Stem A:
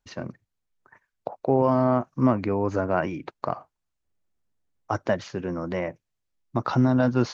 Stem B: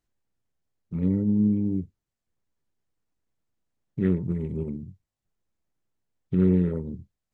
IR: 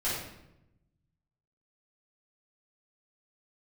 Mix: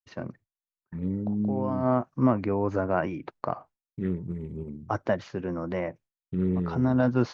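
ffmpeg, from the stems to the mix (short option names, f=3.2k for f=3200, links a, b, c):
-filter_complex "[0:a]highshelf=f=4.5k:g=-11,volume=-1.5dB[a];[1:a]volume=-6dB,asplit=2[b][c];[c]apad=whole_len=323440[d];[a][d]sidechaincompress=threshold=-38dB:ratio=8:attack=33:release=116[e];[e][b]amix=inputs=2:normalize=0,agate=range=-33dB:threshold=-46dB:ratio=3:detection=peak"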